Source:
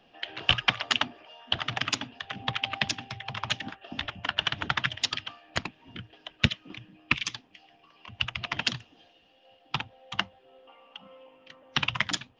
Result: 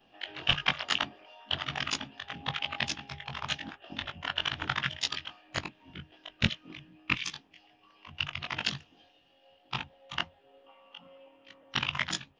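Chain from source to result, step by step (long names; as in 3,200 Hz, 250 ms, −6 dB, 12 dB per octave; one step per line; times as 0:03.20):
every overlapping window played backwards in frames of 45 ms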